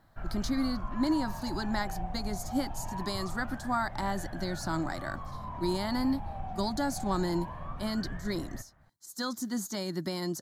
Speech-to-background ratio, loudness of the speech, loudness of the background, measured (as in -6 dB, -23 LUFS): 7.5 dB, -34.0 LUFS, -41.5 LUFS